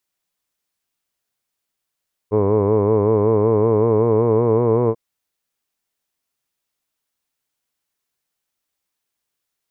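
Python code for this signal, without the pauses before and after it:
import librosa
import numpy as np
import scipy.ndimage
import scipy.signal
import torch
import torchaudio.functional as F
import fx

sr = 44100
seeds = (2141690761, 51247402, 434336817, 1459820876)

y = fx.vowel(sr, seeds[0], length_s=2.64, word='hood', hz=102.0, glide_st=2.5, vibrato_hz=5.3, vibrato_st=0.9)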